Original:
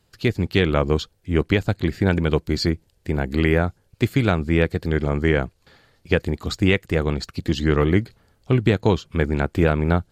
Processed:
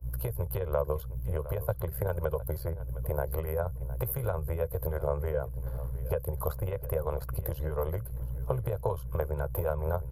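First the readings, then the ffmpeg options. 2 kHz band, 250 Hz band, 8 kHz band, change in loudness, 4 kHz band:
-21.0 dB, -22.5 dB, -5.5 dB, -11.5 dB, under -25 dB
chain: -filter_complex "[0:a]aeval=exprs='val(0)+0.0251*(sin(2*PI*60*n/s)+sin(2*PI*2*60*n/s)/2+sin(2*PI*3*60*n/s)/3+sin(2*PI*4*60*n/s)/4+sin(2*PI*5*60*n/s)/5)':c=same,acrossover=split=120|3500[a][b][c];[a]acompressor=threshold=-25dB:ratio=4[d];[b]acompressor=threshold=-25dB:ratio=4[e];[c]acompressor=threshold=-40dB:ratio=4[f];[d][e][f]amix=inputs=3:normalize=0,aecho=1:1:2:0.5,tremolo=f=71:d=0.667,agate=range=-33dB:threshold=-31dB:ratio=3:detection=peak,highshelf=f=2.1k:g=10.5,acompressor=threshold=-30dB:ratio=6,firequalizer=gain_entry='entry(130,0);entry(240,-18);entry(520,9);entry(1100,4);entry(1900,-17);entry(3800,-26);entry(7800,-20);entry(11000,12)':delay=0.05:min_phase=1,asplit=2[g][h];[h]adelay=711,lowpass=f=4k:p=1,volume=-16dB,asplit=2[i][j];[j]adelay=711,lowpass=f=4k:p=1,volume=0.26,asplit=2[k][l];[l]adelay=711,lowpass=f=4k:p=1,volume=0.26[m];[i][k][m]amix=inputs=3:normalize=0[n];[g][n]amix=inputs=2:normalize=0,volume=3dB"

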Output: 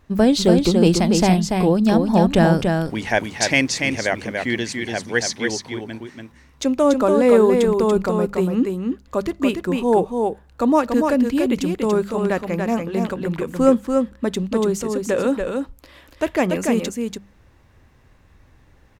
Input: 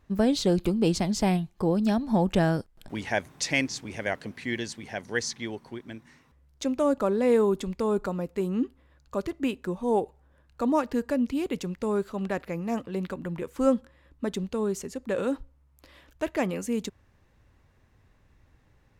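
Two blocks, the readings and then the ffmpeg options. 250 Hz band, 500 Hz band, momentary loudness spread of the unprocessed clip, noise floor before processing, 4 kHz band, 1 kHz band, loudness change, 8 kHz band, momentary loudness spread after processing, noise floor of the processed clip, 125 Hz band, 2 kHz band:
+9.0 dB, +9.5 dB, 11 LU, -63 dBFS, +9.5 dB, +9.5 dB, +9.0 dB, +9.5 dB, 10 LU, -53 dBFS, +9.0 dB, +9.5 dB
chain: -af "bandreject=f=50:t=h:w=6,bandreject=f=100:t=h:w=6,bandreject=f=150:t=h:w=6,bandreject=f=200:t=h:w=6,aecho=1:1:287:0.596,volume=8dB"

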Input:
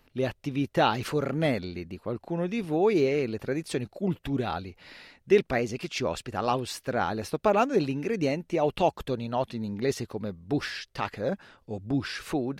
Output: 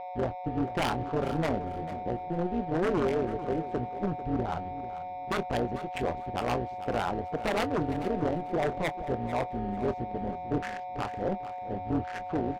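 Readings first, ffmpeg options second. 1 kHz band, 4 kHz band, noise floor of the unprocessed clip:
0.0 dB, -6.0 dB, -65 dBFS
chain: -filter_complex "[0:a]afwtdn=0.02,asplit=2[a][b];[b]asoftclip=type=hard:threshold=-22.5dB,volume=-10.5dB[c];[a][c]amix=inputs=2:normalize=0,aeval=exprs='val(0)+0.0251*sin(2*PI*730*n/s)':c=same,aeval=exprs='0.112*(abs(mod(val(0)/0.112+3,4)-2)-1)':c=same,tremolo=f=180:d=0.824,adynamicsmooth=sensitivity=5.5:basefreq=670,asplit=2[d][e];[e]adelay=25,volume=-13.5dB[f];[d][f]amix=inputs=2:normalize=0,aecho=1:1:444|888|1332:0.211|0.0486|0.0112"

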